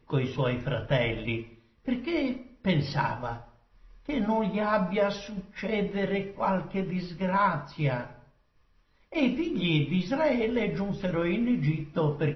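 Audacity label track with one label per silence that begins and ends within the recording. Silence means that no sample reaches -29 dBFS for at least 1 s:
8.020000	9.150000	silence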